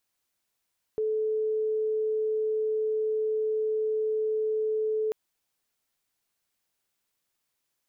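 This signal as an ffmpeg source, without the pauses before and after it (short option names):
-f lavfi -i "aevalsrc='0.0596*sin(2*PI*434*t)':d=4.14:s=44100"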